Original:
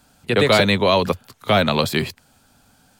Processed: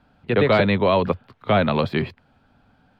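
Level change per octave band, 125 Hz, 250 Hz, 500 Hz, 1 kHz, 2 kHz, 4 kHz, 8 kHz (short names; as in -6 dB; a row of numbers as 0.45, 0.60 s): 0.0 dB, -0.5 dB, -1.0 dB, -2.0 dB, -4.0 dB, -9.5 dB, under -25 dB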